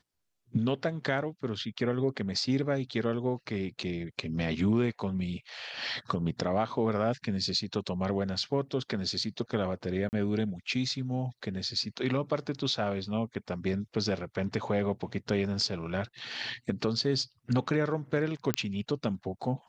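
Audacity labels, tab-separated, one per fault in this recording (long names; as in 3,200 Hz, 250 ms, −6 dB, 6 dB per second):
10.090000	10.130000	drop-out 39 ms
18.540000	18.540000	click −10 dBFS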